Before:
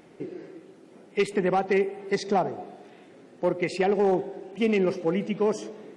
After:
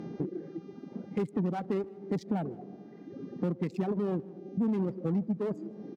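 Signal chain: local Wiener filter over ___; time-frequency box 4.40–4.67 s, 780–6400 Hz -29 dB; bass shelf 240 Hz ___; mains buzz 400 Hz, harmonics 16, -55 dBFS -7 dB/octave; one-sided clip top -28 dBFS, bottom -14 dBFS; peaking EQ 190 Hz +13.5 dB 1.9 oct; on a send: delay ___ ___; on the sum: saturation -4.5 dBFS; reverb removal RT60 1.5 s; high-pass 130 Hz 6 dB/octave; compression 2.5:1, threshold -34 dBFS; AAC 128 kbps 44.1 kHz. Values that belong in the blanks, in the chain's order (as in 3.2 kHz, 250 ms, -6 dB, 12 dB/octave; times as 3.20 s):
15 samples, +11.5 dB, 155 ms, -18 dB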